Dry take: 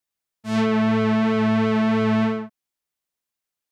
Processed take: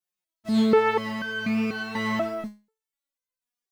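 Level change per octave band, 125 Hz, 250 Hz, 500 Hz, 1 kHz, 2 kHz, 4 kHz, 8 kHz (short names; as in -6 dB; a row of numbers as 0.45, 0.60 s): -10.5 dB, -6.5 dB, -1.0 dB, -2.0 dB, 0.0 dB, -1.5 dB, n/a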